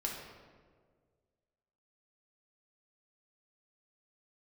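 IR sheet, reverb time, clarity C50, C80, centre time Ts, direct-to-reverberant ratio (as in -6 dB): 1.7 s, 2.5 dB, 4.5 dB, 64 ms, -2.0 dB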